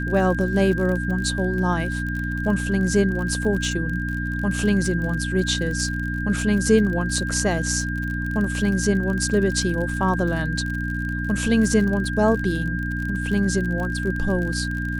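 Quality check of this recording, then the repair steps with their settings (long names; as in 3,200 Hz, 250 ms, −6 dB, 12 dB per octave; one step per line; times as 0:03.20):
surface crackle 47 per second −28 dBFS
mains hum 60 Hz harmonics 5 −27 dBFS
whistle 1,600 Hz −29 dBFS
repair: click removal
notch filter 1,600 Hz, Q 30
hum removal 60 Hz, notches 5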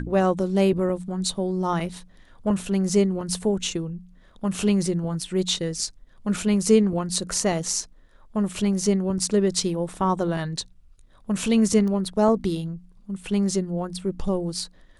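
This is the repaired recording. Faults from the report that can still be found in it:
none of them is left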